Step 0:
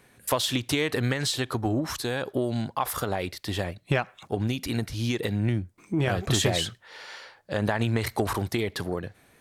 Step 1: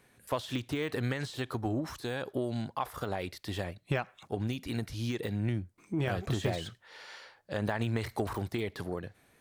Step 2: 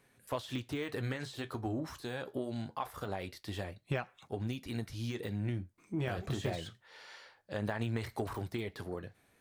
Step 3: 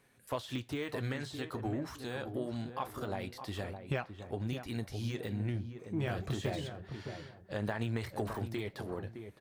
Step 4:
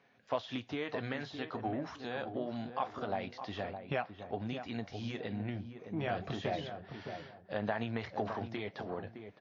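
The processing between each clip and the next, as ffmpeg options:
-af "deesser=0.85,volume=0.501"
-af "flanger=delay=7.1:depth=6.3:regen=-62:speed=0.24:shape=triangular"
-filter_complex "[0:a]asplit=2[s0][s1];[s1]adelay=613,lowpass=f=1100:p=1,volume=0.422,asplit=2[s2][s3];[s3]adelay=613,lowpass=f=1100:p=1,volume=0.31,asplit=2[s4][s5];[s5]adelay=613,lowpass=f=1100:p=1,volume=0.31,asplit=2[s6][s7];[s7]adelay=613,lowpass=f=1100:p=1,volume=0.31[s8];[s0][s2][s4][s6][s8]amix=inputs=5:normalize=0"
-af "highpass=130,equalizer=f=130:t=q:w=4:g=-5,equalizer=f=350:t=q:w=4:g=-5,equalizer=f=710:t=q:w=4:g=6,equalizer=f=4300:t=q:w=4:g=-4,lowpass=f=5100:w=0.5412,lowpass=f=5100:w=1.3066,volume=1.12" -ar 16000 -c:a wmav2 -b:a 64k

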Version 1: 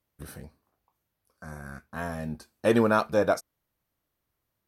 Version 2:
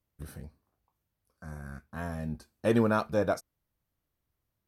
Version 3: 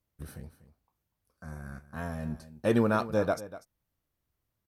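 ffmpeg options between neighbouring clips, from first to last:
-af "lowshelf=f=190:g=9,volume=0.531"
-af "aecho=1:1:243:0.168"

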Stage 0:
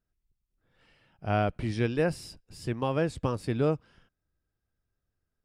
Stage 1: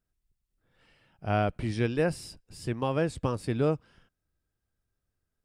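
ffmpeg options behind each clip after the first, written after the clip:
-af "equalizer=f=8700:w=2.7:g=3.5"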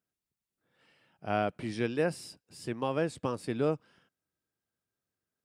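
-af "highpass=170,volume=0.794"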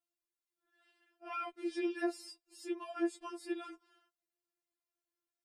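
-af "afftfilt=real='re*4*eq(mod(b,16),0)':imag='im*4*eq(mod(b,16),0)':win_size=2048:overlap=0.75,volume=0.708"

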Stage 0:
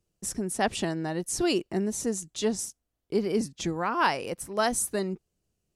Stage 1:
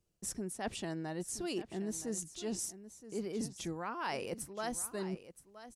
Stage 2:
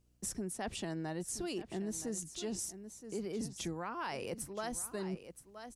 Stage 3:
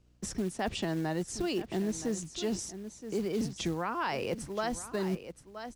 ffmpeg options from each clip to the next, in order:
-af "areverse,acompressor=threshold=0.0224:ratio=6,areverse,aecho=1:1:972:0.2,volume=0.75"
-filter_complex "[0:a]acrossover=split=130[s0][s1];[s1]acompressor=threshold=0.0112:ratio=6[s2];[s0][s2]amix=inputs=2:normalize=0,aeval=exprs='val(0)+0.0002*(sin(2*PI*60*n/s)+sin(2*PI*2*60*n/s)/2+sin(2*PI*3*60*n/s)/3+sin(2*PI*4*60*n/s)/4+sin(2*PI*5*60*n/s)/5)':c=same,volume=1.41"
-filter_complex "[0:a]acrossover=split=540[s0][s1];[s0]acrusher=bits=5:mode=log:mix=0:aa=0.000001[s2];[s1]lowpass=5500[s3];[s2][s3]amix=inputs=2:normalize=0,volume=2.24"

